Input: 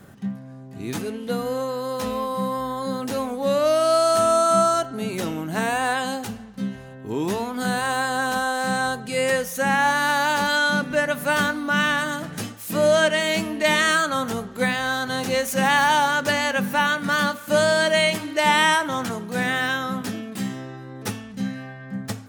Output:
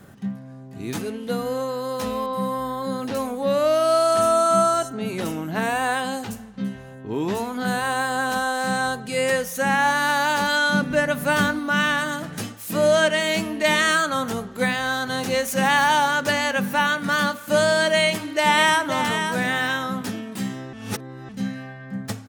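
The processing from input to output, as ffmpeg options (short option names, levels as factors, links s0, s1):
-filter_complex "[0:a]asettb=1/sr,asplit=3[s0][s1][s2];[s0]atrim=end=2.264[s3];[s1]atrim=start=2.26:end=8.3,asetpts=PTS-STARTPTS,afade=t=in:d=0.004:c=qsin,afade=t=out:st=6.036:d=0.004:c=qsin,acrossover=split=5400[s4][s5];[s5]adelay=70[s6];[s4][s6]amix=inputs=2:normalize=0,atrim=end_sample=266364[s7];[s2]atrim=start=8.296[s8];[s3][s7]acrossfade=d=0.004:c1=hsin:c2=qsin[s9];[s9][s8]acrossfade=d=0.004:c1=qsin:c2=hsin,asettb=1/sr,asplit=3[s10][s11][s12];[s10]atrim=end=10.744[s13];[s11]atrim=start=10.74:end=11.59,asetpts=PTS-STARTPTS,afade=t=in:d=0.004:c=qsin,afade=t=out:st=0.846:d=0.004:c=qsin,lowshelf=f=240:g=7[s14];[s12]atrim=start=11.586[s15];[s13][s14]acrossfade=d=0.004:c1=hsin:c2=qsin[s16];[s16][s15]acrossfade=d=0.004:c1=qsin:c2=hsin,asplit=2[s17][s18];[s18]afade=t=in:st=18.04:d=0.01,afade=t=out:st=18.85:d=0.01,aecho=0:1:530|1060|1590:0.446684|0.0893367|0.0178673[s19];[s17][s19]amix=inputs=2:normalize=0,asplit=3[s20][s21][s22];[s20]atrim=end=20.732[s23];[s21]atrim=start=20.728:end=21.292,asetpts=PTS-STARTPTS,areverse[s24];[s22]atrim=start=21.288[s25];[s23][s24]acrossfade=d=0.004:c1=hsin:c2=hsin[s26];[s26][s25]acrossfade=d=0.004:c1=hsin:c2=hsin"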